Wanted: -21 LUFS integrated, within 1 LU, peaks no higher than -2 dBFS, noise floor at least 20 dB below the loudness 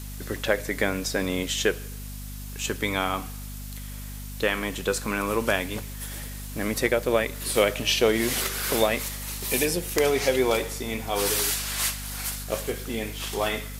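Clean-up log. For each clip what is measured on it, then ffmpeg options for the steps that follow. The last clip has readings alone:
hum 50 Hz; highest harmonic 250 Hz; hum level -35 dBFS; noise floor -37 dBFS; noise floor target -46 dBFS; loudness -26.0 LUFS; peak level -6.0 dBFS; loudness target -21.0 LUFS
-> -af "bandreject=f=50:t=h:w=6,bandreject=f=100:t=h:w=6,bandreject=f=150:t=h:w=6,bandreject=f=200:t=h:w=6,bandreject=f=250:t=h:w=6"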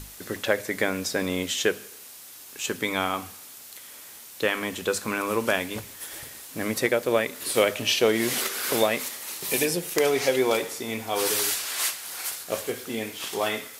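hum not found; noise floor -45 dBFS; noise floor target -46 dBFS
-> -af "afftdn=nr=6:nf=-45"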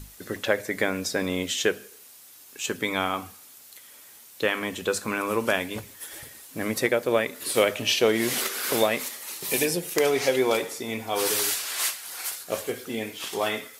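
noise floor -50 dBFS; loudness -26.0 LUFS; peak level -5.5 dBFS; loudness target -21.0 LUFS
-> -af "volume=1.78,alimiter=limit=0.794:level=0:latency=1"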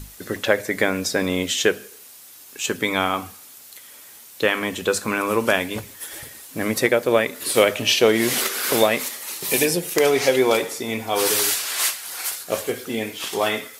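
loudness -21.0 LUFS; peak level -2.0 dBFS; noise floor -44 dBFS

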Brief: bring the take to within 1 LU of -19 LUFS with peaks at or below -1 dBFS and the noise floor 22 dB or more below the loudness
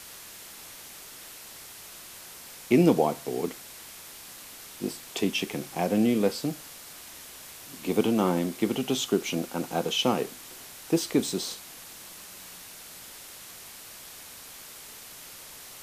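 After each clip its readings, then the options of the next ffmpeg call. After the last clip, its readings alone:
noise floor -46 dBFS; noise floor target -50 dBFS; loudness -27.5 LUFS; peak level -8.5 dBFS; loudness target -19.0 LUFS
-> -af "afftdn=nr=6:nf=-46"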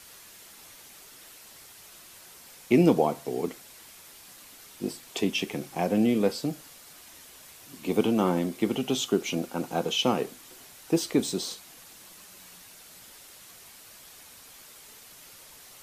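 noise floor -50 dBFS; loudness -27.5 LUFS; peak level -8.5 dBFS; loudness target -19.0 LUFS
-> -af "volume=2.66,alimiter=limit=0.891:level=0:latency=1"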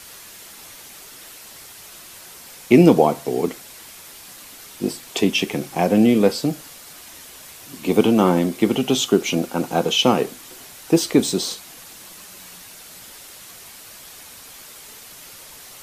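loudness -19.0 LUFS; peak level -1.0 dBFS; noise floor -42 dBFS

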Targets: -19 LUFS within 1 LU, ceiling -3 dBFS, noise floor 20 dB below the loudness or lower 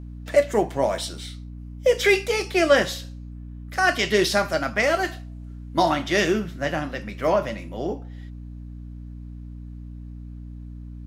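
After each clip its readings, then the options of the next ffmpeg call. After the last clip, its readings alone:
hum 60 Hz; highest harmonic 300 Hz; hum level -35 dBFS; loudness -22.5 LUFS; peak level -5.5 dBFS; loudness target -19.0 LUFS
-> -af "bandreject=f=60:t=h:w=6,bandreject=f=120:t=h:w=6,bandreject=f=180:t=h:w=6,bandreject=f=240:t=h:w=6,bandreject=f=300:t=h:w=6"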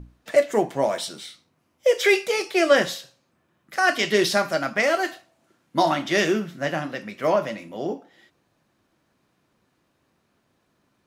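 hum not found; loudness -23.0 LUFS; peak level -5.5 dBFS; loudness target -19.0 LUFS
-> -af "volume=1.58,alimiter=limit=0.708:level=0:latency=1"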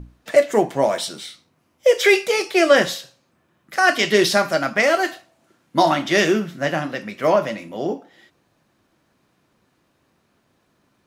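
loudness -19.0 LUFS; peak level -3.0 dBFS; noise floor -66 dBFS

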